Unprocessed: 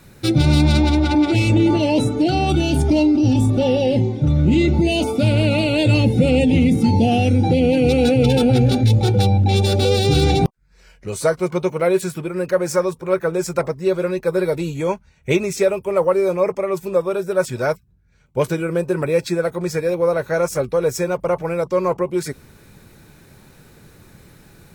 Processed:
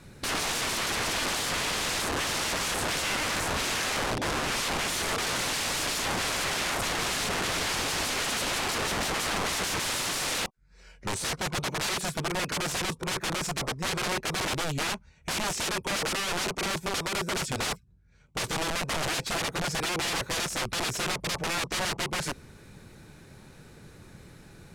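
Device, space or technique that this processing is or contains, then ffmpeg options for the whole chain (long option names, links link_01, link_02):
overflowing digital effects unit: -af "aeval=exprs='(mod(11.2*val(0)+1,2)-1)/11.2':channel_layout=same,lowpass=10000,volume=-3dB"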